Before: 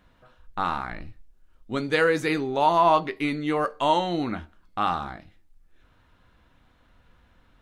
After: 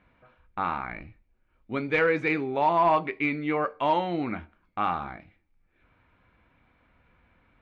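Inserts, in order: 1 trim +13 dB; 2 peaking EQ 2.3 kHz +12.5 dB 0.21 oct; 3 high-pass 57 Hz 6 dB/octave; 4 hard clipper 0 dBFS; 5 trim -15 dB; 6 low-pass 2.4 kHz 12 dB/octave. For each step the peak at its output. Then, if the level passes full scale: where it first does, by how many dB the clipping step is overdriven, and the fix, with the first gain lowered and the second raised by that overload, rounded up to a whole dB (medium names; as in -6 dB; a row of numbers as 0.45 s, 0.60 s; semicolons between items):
+5.5 dBFS, +7.0 dBFS, +7.0 dBFS, 0.0 dBFS, -15.0 dBFS, -14.5 dBFS; step 1, 7.0 dB; step 1 +6 dB, step 5 -8 dB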